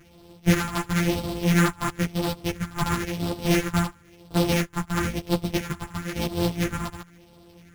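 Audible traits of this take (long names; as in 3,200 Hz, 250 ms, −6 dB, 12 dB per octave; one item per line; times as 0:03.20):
a buzz of ramps at a fixed pitch in blocks of 256 samples
phaser sweep stages 4, 0.98 Hz, lowest notch 470–1,900 Hz
aliases and images of a low sample rate 8,600 Hz, jitter 0%
a shimmering, thickened sound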